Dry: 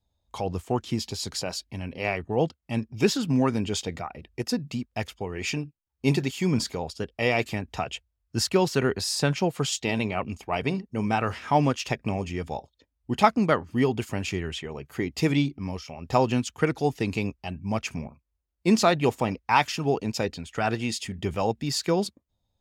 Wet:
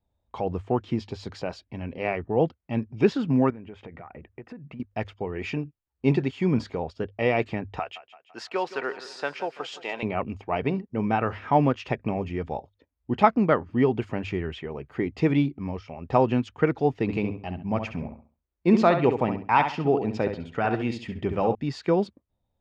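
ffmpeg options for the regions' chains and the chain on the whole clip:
ffmpeg -i in.wav -filter_complex "[0:a]asettb=1/sr,asplit=3[link_01][link_02][link_03];[link_01]atrim=end=3.504[link_04];[link_02]atrim=start=3.5:end=4.8,asetpts=PTS-STARTPTS,afade=type=in:duration=0.004:curve=qsin,afade=type=out:start_time=1.296:duration=0.004:curve=qsin,highshelf=frequency=3100:width_type=q:width=1.5:gain=-12.5,acompressor=threshold=-38dB:ratio=12:attack=3.2:release=140:knee=1:detection=peak[link_05];[link_03]atrim=start=4.796[link_06];[link_04][link_05]acrossfade=duration=0.004:curve1=hsin:curve2=qsin[link_07];[link_07][link_06]acrossfade=duration=0.004:curve1=qsin:curve2=hsin,asettb=1/sr,asplit=3[link_08][link_09][link_10];[link_08]atrim=end=7.794[link_11];[link_09]atrim=start=7.79:end=10.03,asetpts=PTS-STARTPTS,afade=type=in:duration=0.004:curve=qsin,afade=type=out:start_time=2.236:duration=0.004:curve=qsin,highpass=670,aecho=1:1:168|336|504|672|840:0.178|0.0925|0.0481|0.025|0.013,atrim=end_sample=98784[link_12];[link_10]atrim=start=10.026[link_13];[link_11][link_12]acrossfade=duration=0.004:curve1=hsin:curve2=qsin[link_14];[link_14][link_13]acrossfade=duration=0.004:curve1=qsin:curve2=hsin,asettb=1/sr,asplit=3[link_15][link_16][link_17];[link_15]atrim=end=17.024[link_18];[link_16]atrim=start=17.02:end=21.55,asetpts=PTS-STARTPTS,afade=type=in:duration=0.004:curve=qsin,afade=type=out:start_time=4.526:duration=0.004:curve=qsin,asplit=2[link_19][link_20];[link_20]adelay=67,lowpass=frequency=3900:poles=1,volume=-7.5dB,asplit=2[link_21][link_22];[link_22]adelay=67,lowpass=frequency=3900:poles=1,volume=0.29,asplit=2[link_23][link_24];[link_24]adelay=67,lowpass=frequency=3900:poles=1,volume=0.29,asplit=2[link_25][link_26];[link_26]adelay=67,lowpass=frequency=3900:poles=1,volume=0.29[link_27];[link_19][link_21][link_23][link_25][link_27]amix=inputs=5:normalize=0,atrim=end_sample=199773,deesser=0.3[link_28];[link_17]atrim=start=21.546[link_29];[link_18][link_28]acrossfade=duration=0.004:curve1=hsin:curve2=qsin[link_30];[link_30][link_29]acrossfade=duration=0.004:curve1=qsin:curve2=hsin,lowpass=2300,equalizer=frequency=410:width_type=o:width=1.5:gain=2.5,bandreject=frequency=50:width_type=h:width=6,bandreject=frequency=100:width_type=h:width=6" out.wav

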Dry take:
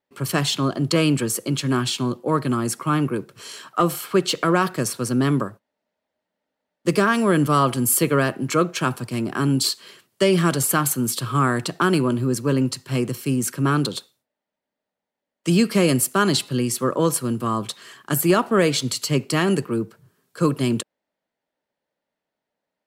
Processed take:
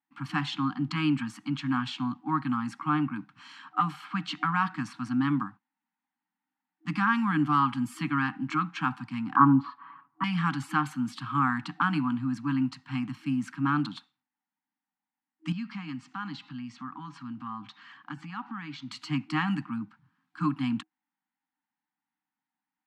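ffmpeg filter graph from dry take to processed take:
ffmpeg -i in.wav -filter_complex "[0:a]asettb=1/sr,asplit=3[link_01][link_02][link_03];[link_01]atrim=end=9.364[link_04];[link_02]atrim=start=9.36:end=10.24,asetpts=PTS-STARTPTS,afade=type=in:duration=0.004:curve=qsin,afade=type=out:start_time=0.876:duration=0.004:curve=qsin,lowpass=frequency=1100:width_type=q:width=5.8,aecho=1:1:7.1:0.8,atrim=end_sample=38808[link_05];[link_03]atrim=start=10.236[link_06];[link_04][link_05]acrossfade=duration=0.004:curve1=hsin:curve2=qsin[link_07];[link_07][link_06]acrossfade=duration=0.004:curve1=qsin:curve2=hsin,asettb=1/sr,asplit=3[link_08][link_09][link_10];[link_08]atrim=end=15.524[link_11];[link_09]atrim=start=15.52:end=18.91,asetpts=PTS-STARTPTS,afade=type=in:duration=0.004:curve=qsin,afade=type=out:start_time=3.386:duration=0.004:curve=qsin,lowpass=frequency=6700:width=0.5412,lowpass=frequency=6700:width=1.3066,acompressor=threshold=-34dB:ratio=2:attack=3.2:release=140:knee=1:detection=peak[link_12];[link_10]atrim=start=18.906[link_13];[link_11][link_12]acrossfade=duration=0.004:curve1=hsin:curve2=qsin[link_14];[link_14][link_13]acrossfade=duration=0.004:curve1=qsin:curve2=hsin,highpass=190,afftfilt=real='re*(1-between(b*sr/4096,320,740))':imag='im*(1-between(b*sr/4096,320,740))':win_size=4096:overlap=0.75,lowpass=2400,volume=-4dB" out.wav

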